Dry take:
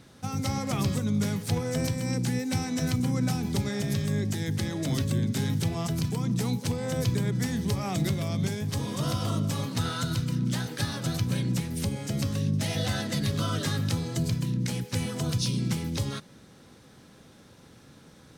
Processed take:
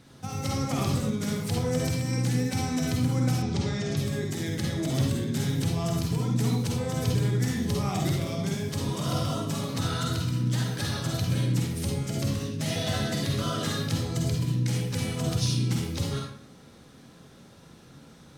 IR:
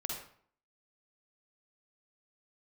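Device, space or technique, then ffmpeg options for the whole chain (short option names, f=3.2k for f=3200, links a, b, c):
bathroom: -filter_complex "[1:a]atrim=start_sample=2205[a];[0:a][a]afir=irnorm=-1:irlink=0,asettb=1/sr,asplit=3[b][c][d];[b]atrim=end=3.424[e];[c]atrim=start=3.42:end=3.97,asetpts=PTS-STARTPTS,afade=t=in:d=0.004:c=qsin,afade=t=out:st=0.546:d=0.004:c=qsin,lowpass=f=7k:w=0.5412,lowpass=f=7k:w=1.3066[f];[d]atrim=start=3.966[g];[e][f]acrossfade=d=0.004:c1=hsin:c2=qsin[h];[h][g]acrossfade=d=0.004:c1=qsin:c2=hsin"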